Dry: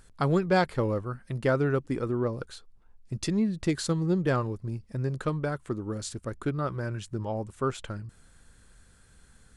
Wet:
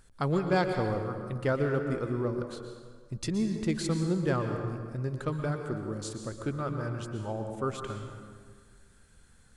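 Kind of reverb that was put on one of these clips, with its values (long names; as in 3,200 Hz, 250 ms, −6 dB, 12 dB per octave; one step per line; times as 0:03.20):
dense smooth reverb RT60 1.7 s, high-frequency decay 0.65×, pre-delay 105 ms, DRR 5 dB
level −3.5 dB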